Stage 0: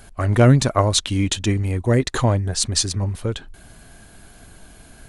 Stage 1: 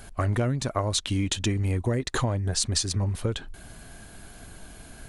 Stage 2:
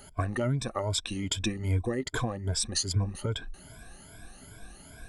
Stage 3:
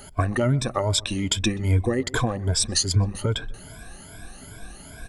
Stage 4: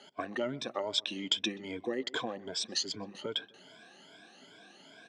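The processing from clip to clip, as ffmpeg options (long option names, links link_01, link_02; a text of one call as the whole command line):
ffmpeg -i in.wav -af "acompressor=threshold=-22dB:ratio=12" out.wav
ffmpeg -i in.wav -af "afftfilt=real='re*pow(10,17/40*sin(2*PI*(1.7*log(max(b,1)*sr/1024/100)/log(2)-(2.5)*(pts-256)/sr)))':imag='im*pow(10,17/40*sin(2*PI*(1.7*log(max(b,1)*sr/1024/100)/log(2)-(2.5)*(pts-256)/sr)))':win_size=1024:overlap=0.75,volume=-6.5dB" out.wav
ffmpeg -i in.wav -filter_complex "[0:a]asplit=2[link_01][link_02];[link_02]adelay=127,lowpass=frequency=1500:poles=1,volume=-20dB,asplit=2[link_03][link_04];[link_04]adelay=127,lowpass=frequency=1500:poles=1,volume=0.48,asplit=2[link_05][link_06];[link_06]adelay=127,lowpass=frequency=1500:poles=1,volume=0.48,asplit=2[link_07][link_08];[link_08]adelay=127,lowpass=frequency=1500:poles=1,volume=0.48[link_09];[link_01][link_03][link_05][link_07][link_09]amix=inputs=5:normalize=0,volume=7dB" out.wav
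ffmpeg -i in.wav -af "highpass=frequency=220:width=0.5412,highpass=frequency=220:width=1.3066,equalizer=frequency=240:width_type=q:width=4:gain=-3,equalizer=frequency=1200:width_type=q:width=4:gain=-4,equalizer=frequency=3200:width_type=q:width=4:gain=8,lowpass=frequency=6000:width=0.5412,lowpass=frequency=6000:width=1.3066,volume=-9dB" out.wav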